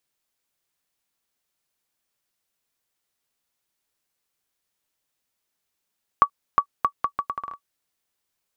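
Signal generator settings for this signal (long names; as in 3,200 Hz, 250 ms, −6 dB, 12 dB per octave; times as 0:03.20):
bouncing ball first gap 0.36 s, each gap 0.74, 1,140 Hz, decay 78 ms −4 dBFS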